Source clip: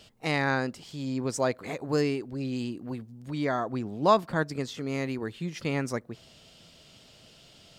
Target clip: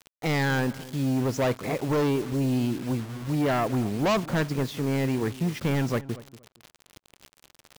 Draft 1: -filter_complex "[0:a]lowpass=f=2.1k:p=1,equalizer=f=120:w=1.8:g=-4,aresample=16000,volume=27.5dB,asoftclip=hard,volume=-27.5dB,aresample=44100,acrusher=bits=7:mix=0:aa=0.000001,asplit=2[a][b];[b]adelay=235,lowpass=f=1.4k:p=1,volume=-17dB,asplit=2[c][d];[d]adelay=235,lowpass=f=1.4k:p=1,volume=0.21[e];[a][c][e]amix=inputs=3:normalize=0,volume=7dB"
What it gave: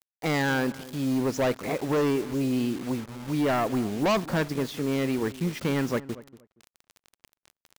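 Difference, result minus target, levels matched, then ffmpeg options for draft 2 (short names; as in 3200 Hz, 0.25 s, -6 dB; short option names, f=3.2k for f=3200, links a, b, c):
125 Hz band -4.0 dB
-filter_complex "[0:a]lowpass=f=2.1k:p=1,equalizer=f=120:w=1.8:g=3.5,aresample=16000,volume=27.5dB,asoftclip=hard,volume=-27.5dB,aresample=44100,acrusher=bits=7:mix=0:aa=0.000001,asplit=2[a][b];[b]adelay=235,lowpass=f=1.4k:p=1,volume=-17dB,asplit=2[c][d];[d]adelay=235,lowpass=f=1.4k:p=1,volume=0.21[e];[a][c][e]amix=inputs=3:normalize=0,volume=7dB"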